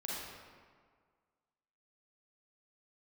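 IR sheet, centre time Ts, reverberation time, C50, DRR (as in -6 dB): 116 ms, 1.8 s, -4.0 dB, -6.5 dB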